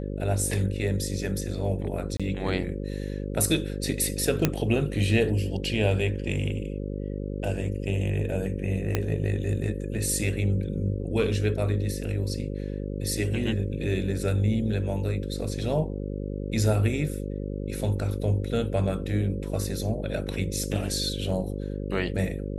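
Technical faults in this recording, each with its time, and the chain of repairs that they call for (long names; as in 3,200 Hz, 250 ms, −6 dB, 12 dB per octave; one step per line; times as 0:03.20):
mains buzz 50 Hz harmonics 11 −32 dBFS
0:02.17–0:02.20: drop-out 26 ms
0:04.45: click −6 dBFS
0:08.95: click −10 dBFS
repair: click removal
hum removal 50 Hz, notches 11
repair the gap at 0:02.17, 26 ms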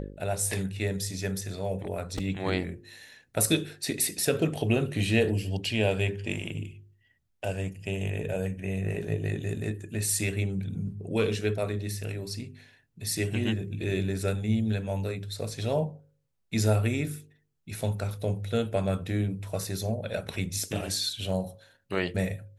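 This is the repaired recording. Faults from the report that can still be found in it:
0:08.95: click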